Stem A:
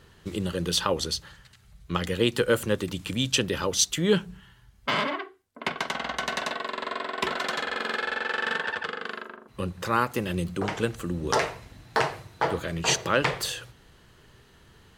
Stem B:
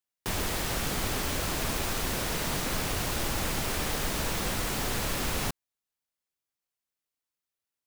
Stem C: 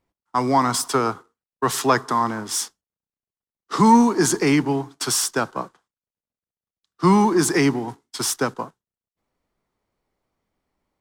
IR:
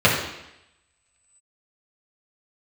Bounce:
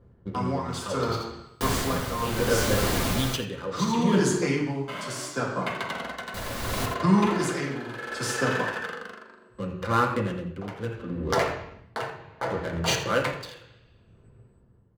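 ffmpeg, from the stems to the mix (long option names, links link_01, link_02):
-filter_complex "[0:a]adynamicsmooth=sensitivity=6.5:basefreq=510,volume=-3.5dB,asplit=3[link_01][link_02][link_03];[link_02]volume=-20.5dB[link_04];[link_03]volume=-13.5dB[link_05];[1:a]adelay=1350,volume=2dB,asplit=3[link_06][link_07][link_08];[link_06]atrim=end=3.36,asetpts=PTS-STARTPTS,afade=type=out:start_time=3.356:duration=0.004:curve=hsin[link_09];[link_07]atrim=start=3.36:end=6.34,asetpts=PTS-STARTPTS,volume=0[link_10];[link_08]atrim=start=6.34,asetpts=PTS-STARTPTS,afade=type=in:duration=0.004:curve=hsin[link_11];[link_09][link_10][link_11]concat=n=3:v=0:a=1,asplit=3[link_12][link_13][link_14];[link_13]volume=-23dB[link_15];[link_14]volume=-9.5dB[link_16];[2:a]equalizer=frequency=7000:width=0.87:gain=5.5,acompressor=threshold=-18dB:ratio=6,volume=-14.5dB,asplit=3[link_17][link_18][link_19];[link_18]volume=-9.5dB[link_20];[link_19]apad=whole_len=660461[link_21];[link_01][link_21]sidechaincompress=threshold=-45dB:ratio=8:attack=16:release=478[link_22];[3:a]atrim=start_sample=2205[link_23];[link_04][link_15][link_20]amix=inputs=3:normalize=0[link_24];[link_24][link_23]afir=irnorm=-1:irlink=0[link_25];[link_05][link_16]amix=inputs=2:normalize=0,aecho=0:1:84:1[link_26];[link_22][link_12][link_17][link_25][link_26]amix=inputs=5:normalize=0,tremolo=f=0.7:d=0.67"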